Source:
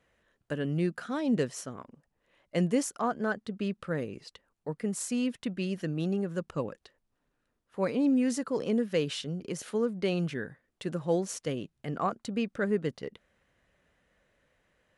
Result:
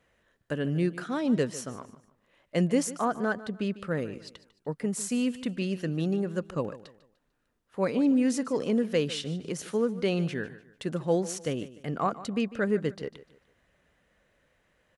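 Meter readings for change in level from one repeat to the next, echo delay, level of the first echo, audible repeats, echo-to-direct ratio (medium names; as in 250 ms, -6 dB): -9.5 dB, 149 ms, -16.5 dB, 2, -16.0 dB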